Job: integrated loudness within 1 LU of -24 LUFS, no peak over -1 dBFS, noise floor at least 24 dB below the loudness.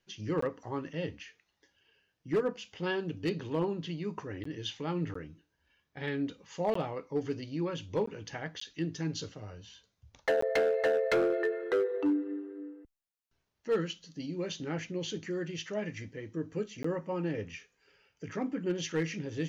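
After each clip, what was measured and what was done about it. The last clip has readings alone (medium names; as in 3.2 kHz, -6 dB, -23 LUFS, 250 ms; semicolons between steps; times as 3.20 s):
clipped samples 0.9%; clipping level -23.0 dBFS; dropouts 8; longest dropout 14 ms; loudness -34.0 LUFS; peak level -23.0 dBFS; loudness target -24.0 LUFS
-> clip repair -23 dBFS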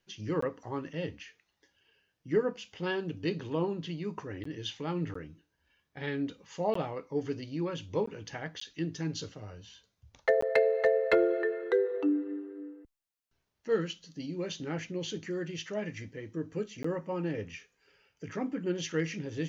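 clipped samples 0.0%; dropouts 8; longest dropout 14 ms
-> interpolate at 0.41/4.44/5.14/6.74/8.06/8.60/10.41/16.83 s, 14 ms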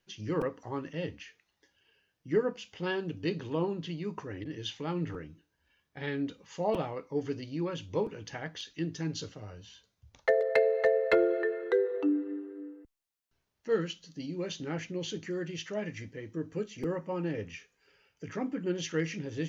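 dropouts 0; loudness -33.0 LUFS; peak level -14.0 dBFS; loudness target -24.0 LUFS
-> trim +9 dB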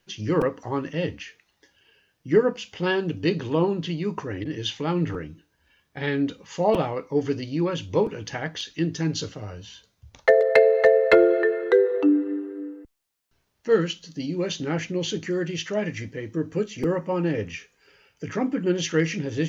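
loudness -24.0 LUFS; peak level -5.0 dBFS; noise floor -71 dBFS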